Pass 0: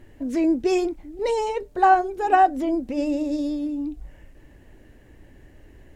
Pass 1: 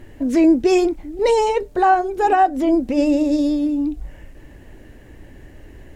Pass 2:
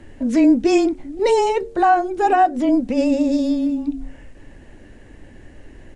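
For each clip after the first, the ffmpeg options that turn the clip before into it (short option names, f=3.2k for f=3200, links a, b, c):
-af "alimiter=limit=-14dB:level=0:latency=1:release=266,volume=7.5dB"
-af "bandreject=f=94.95:t=h:w=4,bandreject=f=189.9:t=h:w=4,bandreject=f=284.85:t=h:w=4,bandreject=f=379.8:t=h:w=4,bandreject=f=474.75:t=h:w=4,afreqshift=-17,aresample=22050,aresample=44100"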